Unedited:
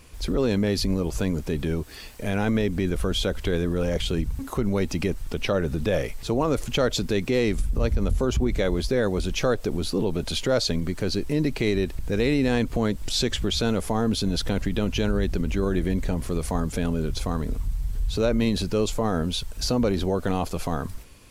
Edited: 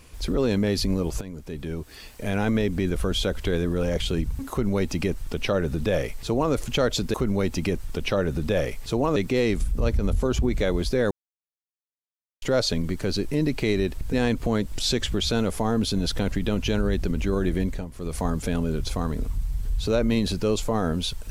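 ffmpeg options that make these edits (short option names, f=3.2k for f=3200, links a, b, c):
-filter_complex "[0:a]asplit=9[a][b][c][d][e][f][g][h][i];[a]atrim=end=1.21,asetpts=PTS-STARTPTS,afade=t=out:st=1.206:d=0.004:c=hsin:silence=0.188365[j];[b]atrim=start=1.21:end=7.142,asetpts=PTS-STARTPTS,afade=t=in:d=1.13:silence=0.188365[k];[c]atrim=start=4.508:end=6.532[l];[d]atrim=start=7.138:end=9.09,asetpts=PTS-STARTPTS,afade=t=out:st=1.948:d=0.004:c=hsin[m];[e]atrim=start=9.09:end=10.4,asetpts=PTS-STARTPTS,volume=0[n];[f]atrim=start=10.4:end=12.112,asetpts=PTS-STARTPTS,afade=t=in:d=0.004:c=hsin[o];[g]atrim=start=12.428:end=16.2,asetpts=PTS-STARTPTS,afade=t=out:st=3.492:d=0.28:silence=0.237137[p];[h]atrim=start=16.2:end=16.23,asetpts=PTS-STARTPTS,volume=-12.5dB[q];[i]atrim=start=16.23,asetpts=PTS-STARTPTS,afade=t=in:d=0.28:silence=0.237137[r];[j][k]concat=n=2:v=0:a=1[s];[s][l]acrossfade=d=0.004:c1=hsin:c2=hsin[t];[m][n][o]concat=n=3:v=0:a=1[u];[t][u]acrossfade=d=0.004:c1=hsin:c2=hsin[v];[p][q][r]concat=n=3:v=0:a=1[w];[v][w]acrossfade=d=0.004:c1=hsin:c2=hsin"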